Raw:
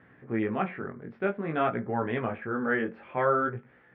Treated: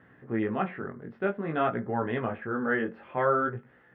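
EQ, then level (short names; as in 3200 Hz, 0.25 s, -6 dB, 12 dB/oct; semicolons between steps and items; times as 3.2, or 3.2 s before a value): notch 2300 Hz, Q 9.2; 0.0 dB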